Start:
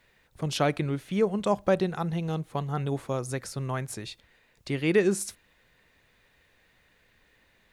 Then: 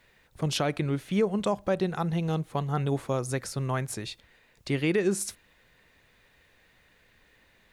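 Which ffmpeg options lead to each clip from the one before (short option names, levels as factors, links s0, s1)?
-af "alimiter=limit=0.126:level=0:latency=1:release=190,volume=1.26"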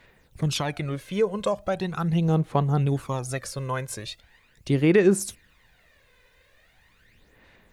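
-af "aphaser=in_gain=1:out_gain=1:delay=2:decay=0.58:speed=0.4:type=sinusoidal"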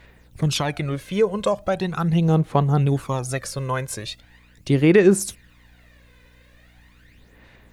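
-af "aeval=exprs='val(0)+0.00141*(sin(2*PI*60*n/s)+sin(2*PI*2*60*n/s)/2+sin(2*PI*3*60*n/s)/3+sin(2*PI*4*60*n/s)/4+sin(2*PI*5*60*n/s)/5)':c=same,volume=1.58"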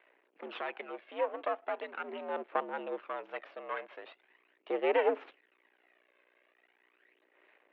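-af "aeval=exprs='max(val(0),0)':c=same,highpass=f=280:t=q:w=0.5412,highpass=f=280:t=q:w=1.307,lowpass=f=2900:t=q:w=0.5176,lowpass=f=2900:t=q:w=0.7071,lowpass=f=2900:t=q:w=1.932,afreqshift=73,volume=0.398"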